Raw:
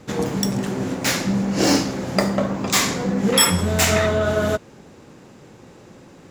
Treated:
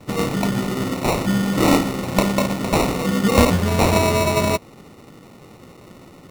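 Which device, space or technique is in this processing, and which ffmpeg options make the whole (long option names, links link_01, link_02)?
crushed at another speed: -af "asetrate=35280,aresample=44100,acrusher=samples=34:mix=1:aa=0.000001,asetrate=55125,aresample=44100,volume=1.5dB"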